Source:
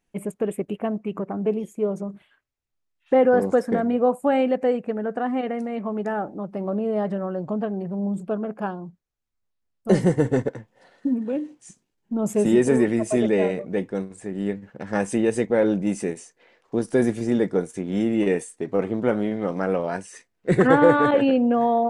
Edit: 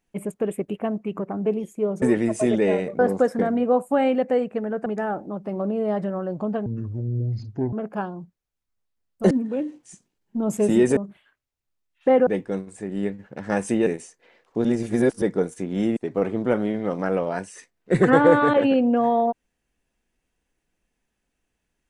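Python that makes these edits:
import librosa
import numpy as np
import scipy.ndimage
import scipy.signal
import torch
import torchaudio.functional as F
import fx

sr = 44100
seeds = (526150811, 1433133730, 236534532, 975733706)

y = fx.edit(x, sr, fx.swap(start_s=2.02, length_s=1.3, other_s=12.73, other_length_s=0.97),
    fx.cut(start_s=5.19, length_s=0.75),
    fx.speed_span(start_s=7.74, length_s=0.64, speed=0.6),
    fx.cut(start_s=9.96, length_s=1.11),
    fx.cut(start_s=15.3, length_s=0.74),
    fx.reverse_span(start_s=16.82, length_s=0.57),
    fx.cut(start_s=18.14, length_s=0.4), tone=tone)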